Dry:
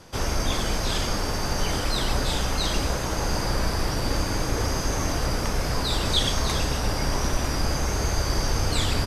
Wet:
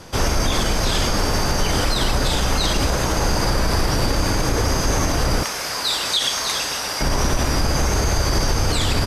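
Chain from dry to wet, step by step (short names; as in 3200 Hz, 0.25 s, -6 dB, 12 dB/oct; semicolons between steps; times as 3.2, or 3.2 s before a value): 5.43–7.01 HPF 1500 Hz 6 dB/oct; limiter -17.5 dBFS, peak gain reduction 6.5 dB; gain +8 dB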